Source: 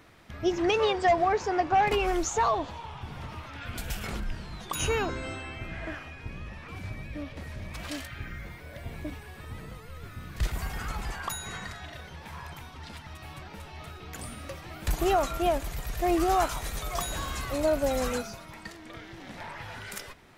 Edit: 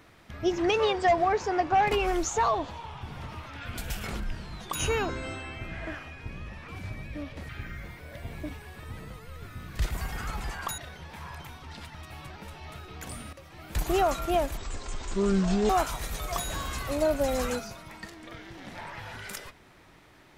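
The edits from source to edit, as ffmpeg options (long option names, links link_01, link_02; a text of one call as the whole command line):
ffmpeg -i in.wav -filter_complex "[0:a]asplit=6[link_01][link_02][link_03][link_04][link_05][link_06];[link_01]atrim=end=7.492[link_07];[link_02]atrim=start=8.098:end=11.392[link_08];[link_03]atrim=start=11.898:end=14.45,asetpts=PTS-STARTPTS,afade=type=out:start_time=2.548:duration=0.004:curve=hsin:silence=0.251189[link_09];[link_04]atrim=start=14.45:end=15.694,asetpts=PTS-STARTPTS,afade=type=in:duration=0.53:silence=0.251189[link_10];[link_05]atrim=start=15.69:end=16.32,asetpts=PTS-STARTPTS,asetrate=24696,aresample=44100,atrim=end_sample=49612,asetpts=PTS-STARTPTS[link_11];[link_06]atrim=start=16.316[link_12];[link_07][link_08]acrossfade=duration=0.004:curve1=hsin:curve2=hsin[link_13];[link_09][link_10]concat=n=2:v=0:a=1[link_14];[link_13][link_14]acrossfade=duration=0.004:curve1=hsin:curve2=hsin[link_15];[link_15][link_11]acrossfade=duration=0.004:curve1=hsin:curve2=hsin[link_16];[link_16][link_12]acrossfade=duration=0.004:curve1=hsin:curve2=hsin" out.wav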